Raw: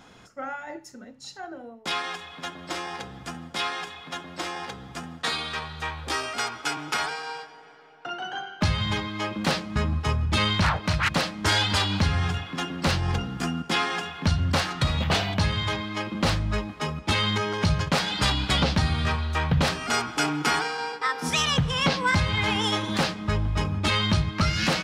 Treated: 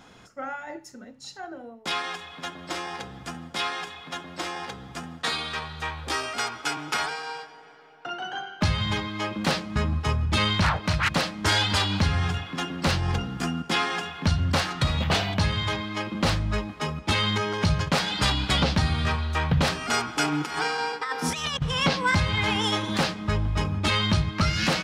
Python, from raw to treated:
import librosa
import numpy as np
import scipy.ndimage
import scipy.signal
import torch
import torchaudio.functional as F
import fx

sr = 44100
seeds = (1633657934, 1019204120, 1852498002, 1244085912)

y = fx.over_compress(x, sr, threshold_db=-27.0, ratio=-0.5, at=(20.32, 21.62))